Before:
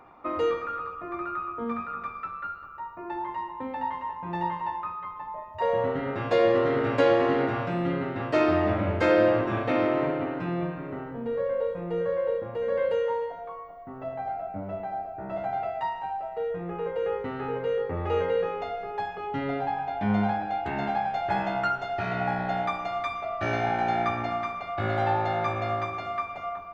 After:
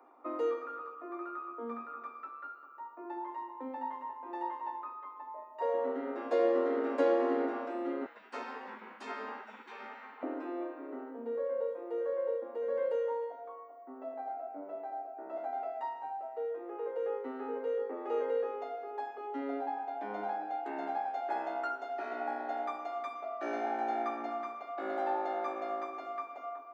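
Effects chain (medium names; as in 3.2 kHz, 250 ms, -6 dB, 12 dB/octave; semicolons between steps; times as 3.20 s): steep high-pass 240 Hz 96 dB/octave; 8.06–10.23 s: spectral gate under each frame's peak -15 dB weak; peaking EQ 3 kHz -10 dB 2 oct; trim -5.5 dB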